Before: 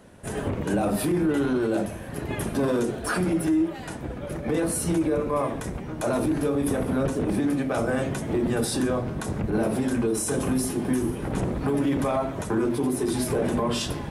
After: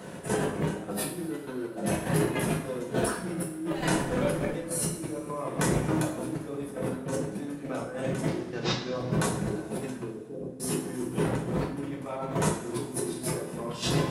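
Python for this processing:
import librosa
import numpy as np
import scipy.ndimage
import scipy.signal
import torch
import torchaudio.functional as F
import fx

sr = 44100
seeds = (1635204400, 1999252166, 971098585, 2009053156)

y = fx.delta_mod(x, sr, bps=32000, step_db=-34.0, at=(8.28, 8.94))
y = scipy.signal.sosfilt(scipy.signal.butter(2, 120.0, 'highpass', fs=sr, output='sos'), y)
y = fx.over_compress(y, sr, threshold_db=-34.0, ratio=-1.0)
y = fx.chopper(y, sr, hz=3.4, depth_pct=65, duty_pct=65)
y = fx.dmg_noise_colour(y, sr, seeds[0], colour='brown', level_db=-49.0, at=(3.75, 4.53), fade=0.02)
y = fx.ladder_lowpass(y, sr, hz=620.0, resonance_pct=30, at=(10.08, 10.6))
y = y + 10.0 ** (-23.0 / 20.0) * np.pad(y, (int(241 * sr / 1000.0), 0))[:len(y)]
y = fx.rev_double_slope(y, sr, seeds[1], early_s=0.49, late_s=2.7, knee_db=-18, drr_db=-1.0)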